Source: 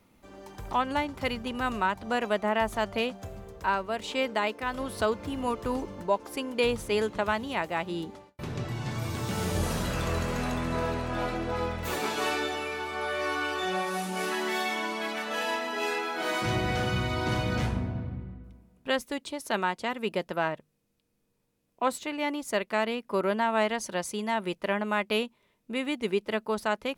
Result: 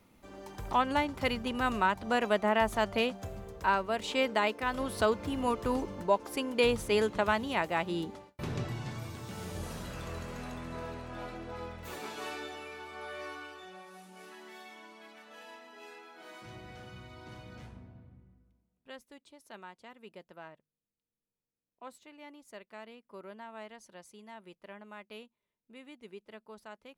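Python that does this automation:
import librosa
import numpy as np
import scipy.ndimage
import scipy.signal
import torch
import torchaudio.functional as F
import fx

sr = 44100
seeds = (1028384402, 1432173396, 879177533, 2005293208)

y = fx.gain(x, sr, db=fx.line((8.54, -0.5), (9.2, -11.0), (13.21, -11.0), (13.72, -20.0)))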